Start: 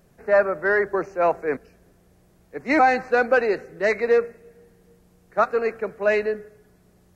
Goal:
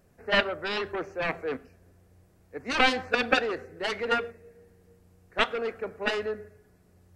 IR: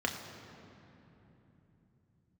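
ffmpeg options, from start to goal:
-filter_complex "[0:a]equalizer=frequency=90:width=7.6:gain=14,aeval=exprs='0.422*(cos(1*acos(clip(val(0)/0.422,-1,1)))-cos(1*PI/2))+0.211*(cos(3*acos(clip(val(0)/0.422,-1,1)))-cos(3*PI/2))':channel_layout=same,asplit=2[link_01][link_02];[1:a]atrim=start_sample=2205,afade=type=out:start_time=0.18:duration=0.01,atrim=end_sample=8379[link_03];[link_02][link_03]afir=irnorm=-1:irlink=0,volume=-17.5dB[link_04];[link_01][link_04]amix=inputs=2:normalize=0"

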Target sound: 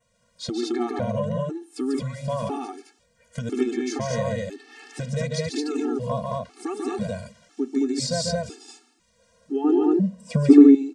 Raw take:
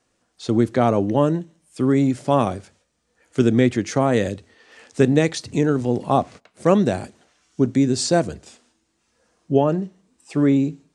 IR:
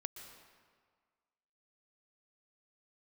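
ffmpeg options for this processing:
-filter_complex "[0:a]acompressor=threshold=-30dB:ratio=2.5,asettb=1/sr,asplit=3[link_01][link_02][link_03];[link_01]atrim=end=9.644[link_04];[link_02]atrim=start=9.64:end=10.53,asetpts=PTS-STARTPTS,afade=type=in:duration=0.004:curve=qsin,afade=type=out:start_time=0.886:duration=0.004:curve=qsin,equalizer=frequency=290:width=0.48:gain=14.5[link_05];[link_03]atrim=start=10.526[link_06];[link_04][link_05]acrossfade=duration=0.004:curve1=hsin:curve2=qsin[link_07];[link_07][link_06]acrossfade=duration=0.004:curve1=qsin:curve2=hsin,aecho=1:1:142.9|218.7:0.631|0.891,adynamicequalizer=threshold=0.00251:dfrequency=4800:dqfactor=3.3:tfrequency=4800:tqfactor=3.3:attack=5:release=100:ratio=0.375:range=2.5:mode=boostabove:tftype=bell,afftfilt=real='re*gt(sin(2*PI*1*pts/sr)*(1-2*mod(floor(b*sr/1024/230),2)),0)':imag='im*gt(sin(2*PI*1*pts/sr)*(1-2*mod(floor(b*sr/1024/230),2)),0)':win_size=1024:overlap=0.75,volume=3dB"

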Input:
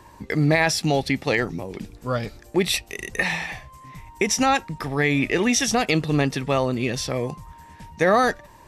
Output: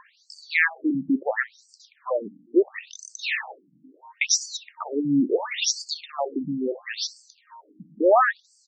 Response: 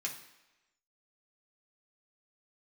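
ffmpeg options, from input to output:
-af "aecho=1:1:64|128:0.1|0.025,afftfilt=real='re*between(b*sr/1024,220*pow(6300/220,0.5+0.5*sin(2*PI*0.73*pts/sr))/1.41,220*pow(6300/220,0.5+0.5*sin(2*PI*0.73*pts/sr))*1.41)':imag='im*between(b*sr/1024,220*pow(6300/220,0.5+0.5*sin(2*PI*0.73*pts/sr))/1.41,220*pow(6300/220,0.5+0.5*sin(2*PI*0.73*pts/sr))*1.41)':win_size=1024:overlap=0.75,volume=3.5dB"

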